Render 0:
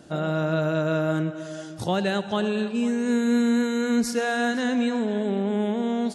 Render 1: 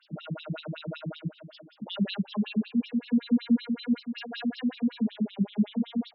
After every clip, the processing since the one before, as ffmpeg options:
-af "aexciter=amount=3.5:drive=2.5:freq=2300,lowshelf=f=260:t=q:w=3:g=6.5,afftfilt=real='re*between(b*sr/1024,210*pow(4000/210,0.5+0.5*sin(2*PI*5.3*pts/sr))/1.41,210*pow(4000/210,0.5+0.5*sin(2*PI*5.3*pts/sr))*1.41)':imag='im*between(b*sr/1024,210*pow(4000/210,0.5+0.5*sin(2*PI*5.3*pts/sr))/1.41,210*pow(4000/210,0.5+0.5*sin(2*PI*5.3*pts/sr))*1.41)':win_size=1024:overlap=0.75,volume=0.501"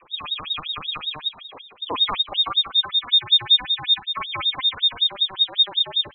-af "crystalizer=i=5:c=0,lowpass=f=3300:t=q:w=0.5098,lowpass=f=3300:t=q:w=0.6013,lowpass=f=3300:t=q:w=0.9,lowpass=f=3300:t=q:w=2.563,afreqshift=-3900,volume=2.11"

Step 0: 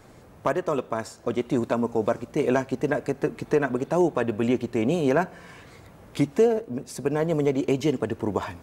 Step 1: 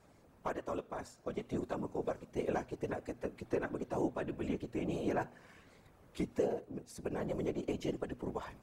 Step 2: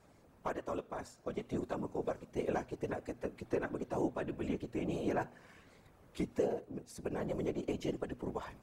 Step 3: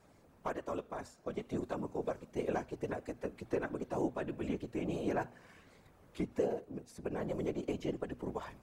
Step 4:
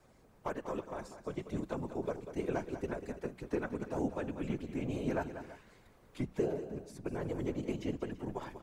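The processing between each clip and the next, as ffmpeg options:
-af "afftfilt=real='hypot(re,im)*cos(2*PI*random(0))':imag='hypot(re,im)*sin(2*PI*random(1))':win_size=512:overlap=0.75,bandreject=f=121:t=h:w=4,bandreject=f=242:t=h:w=4,volume=0.422"
-af anull
-filter_complex "[0:a]bandreject=f=60:t=h:w=6,bandreject=f=120:t=h:w=6,acrossover=split=3100[s0][s1];[s1]alimiter=level_in=15.8:limit=0.0631:level=0:latency=1:release=374,volume=0.0631[s2];[s0][s2]amix=inputs=2:normalize=0"
-filter_complex "[0:a]afreqshift=-53,asplit=2[s0][s1];[s1]aecho=0:1:192|333:0.282|0.141[s2];[s0][s2]amix=inputs=2:normalize=0"

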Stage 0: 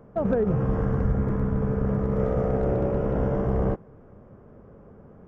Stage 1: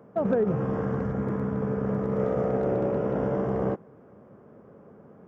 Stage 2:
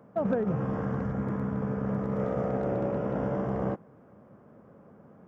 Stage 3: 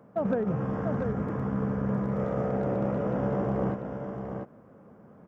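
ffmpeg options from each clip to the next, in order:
-af "highpass=160"
-af "equalizer=f=410:t=o:w=0.47:g=-6,volume=0.841"
-af "aecho=1:1:693:0.501"

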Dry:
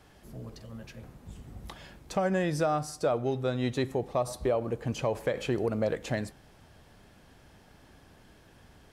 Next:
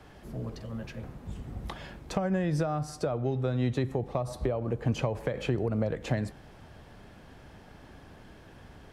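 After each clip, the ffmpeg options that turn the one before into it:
-filter_complex "[0:a]highshelf=f=4300:g=-9.5,acrossover=split=170[s0][s1];[s1]acompressor=threshold=0.0178:ratio=6[s2];[s0][s2]amix=inputs=2:normalize=0,volume=2"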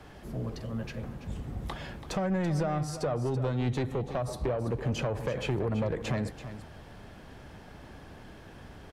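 -af "asoftclip=type=tanh:threshold=0.0501,aecho=1:1:333:0.251,volume=1.33"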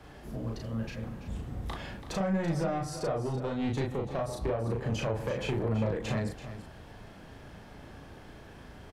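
-filter_complex "[0:a]asplit=2[s0][s1];[s1]adelay=36,volume=0.794[s2];[s0][s2]amix=inputs=2:normalize=0,volume=0.75"

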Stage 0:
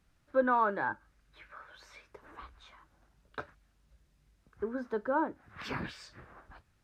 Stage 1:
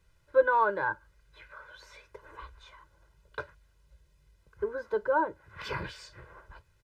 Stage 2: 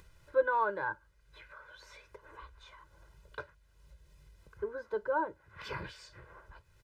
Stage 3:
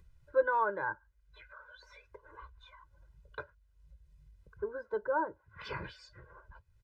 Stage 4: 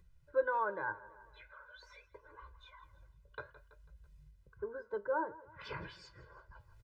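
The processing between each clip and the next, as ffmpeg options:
-af "aecho=1:1:2:0.92"
-af "acompressor=mode=upward:threshold=0.00708:ratio=2.5,volume=0.562"
-af "afftdn=nr=14:nf=-54"
-af "aecho=1:1:165|330|495|660:0.1|0.048|0.023|0.0111,flanger=delay=5.5:depth=4.5:regen=80:speed=0.5:shape=triangular,areverse,acompressor=mode=upward:threshold=0.00251:ratio=2.5,areverse,volume=1.12"

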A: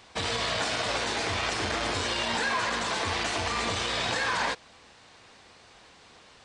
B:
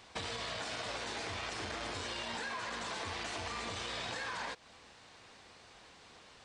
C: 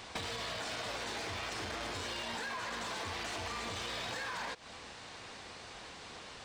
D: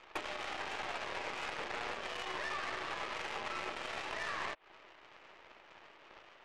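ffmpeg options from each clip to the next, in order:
-af "acompressor=threshold=0.02:ratio=6,volume=0.668"
-af "asoftclip=type=hard:threshold=0.0168,acompressor=threshold=0.00501:ratio=6,volume=2.66"
-af "highpass=f=160:t=q:w=0.5412,highpass=f=160:t=q:w=1.307,lowpass=f=2900:t=q:w=0.5176,lowpass=f=2900:t=q:w=0.7071,lowpass=f=2900:t=q:w=1.932,afreqshift=140,aeval=exprs='0.0398*(cos(1*acos(clip(val(0)/0.0398,-1,1)))-cos(1*PI/2))+0.00501*(cos(4*acos(clip(val(0)/0.0398,-1,1)))-cos(4*PI/2))+0.00178*(cos(5*acos(clip(val(0)/0.0398,-1,1)))-cos(5*PI/2))+0.00562*(cos(7*acos(clip(val(0)/0.0398,-1,1)))-cos(7*PI/2))':c=same,volume=1.19"

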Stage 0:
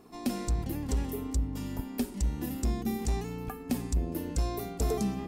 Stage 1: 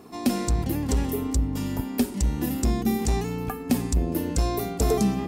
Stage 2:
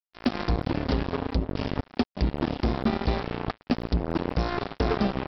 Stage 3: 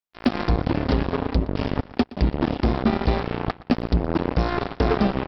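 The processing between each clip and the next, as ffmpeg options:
-af "highpass=56,volume=2.51"
-af "acompressor=threshold=0.0794:ratio=20,aresample=11025,acrusher=bits=3:mix=0:aa=0.5,aresample=44100,volume=1.19"
-filter_complex "[0:a]asplit=2[s0][s1];[s1]adynamicsmooth=sensitivity=1:basefreq=4800,volume=0.708[s2];[s0][s2]amix=inputs=2:normalize=0,aecho=1:1:119|238|357:0.1|0.034|0.0116"

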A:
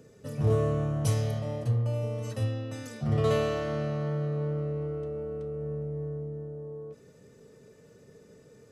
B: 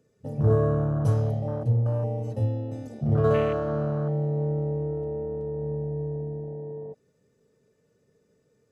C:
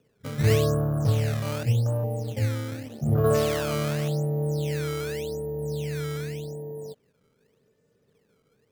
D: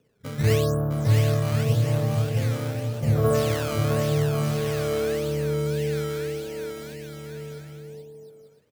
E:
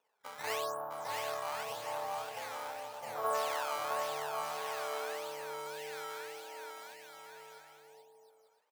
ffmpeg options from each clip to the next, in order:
-af "afwtdn=0.0178,volume=1.58"
-af "acrusher=samples=14:mix=1:aa=0.000001:lfo=1:lforange=22.4:lforate=0.86"
-af "aecho=1:1:660|1089|1368|1549|1667:0.631|0.398|0.251|0.158|0.1"
-af "highpass=f=870:t=q:w=4.9,volume=0.376"

